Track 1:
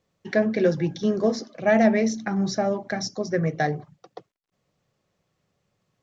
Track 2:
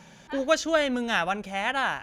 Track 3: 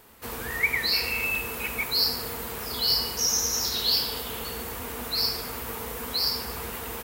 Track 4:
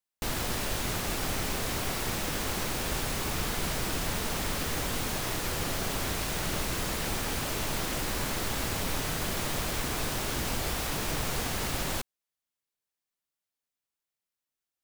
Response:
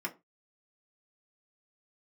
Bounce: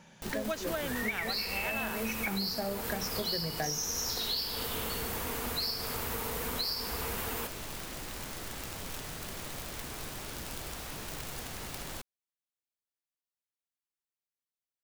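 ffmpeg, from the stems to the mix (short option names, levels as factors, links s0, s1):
-filter_complex "[0:a]volume=0.668[s0];[1:a]volume=0.473,asplit=2[s1][s2];[2:a]acompressor=mode=upward:threshold=0.0316:ratio=2.5,adelay=450,volume=0.841[s3];[3:a]aeval=exprs='(mod(13.3*val(0)+1,2)-1)/13.3':c=same,volume=0.335[s4];[s2]apad=whole_len=265919[s5];[s0][s5]sidechaincompress=threshold=0.0112:ratio=8:attack=8.1:release=299[s6];[s6][s1][s3][s4]amix=inputs=4:normalize=0,acompressor=threshold=0.0316:ratio=10"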